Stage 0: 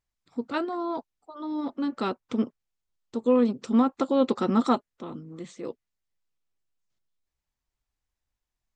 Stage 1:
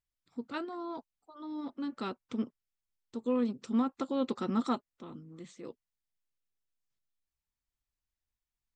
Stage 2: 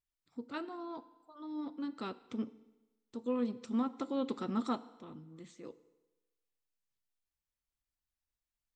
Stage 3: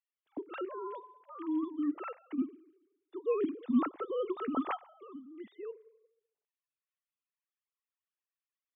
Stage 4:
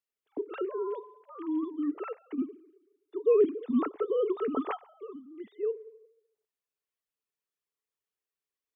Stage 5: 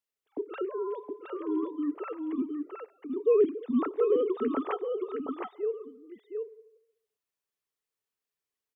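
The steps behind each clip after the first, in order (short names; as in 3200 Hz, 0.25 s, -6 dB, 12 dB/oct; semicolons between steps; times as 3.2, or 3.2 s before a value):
bell 610 Hz -4.5 dB 1.7 oct; gain -6.5 dB
FDN reverb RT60 1.1 s, low-frequency decay 0.85×, high-frequency decay 0.95×, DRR 14 dB; gain -3.5 dB
sine-wave speech; gain +3 dB
bell 430 Hz +13.5 dB 0.33 oct
echo 0.717 s -4.5 dB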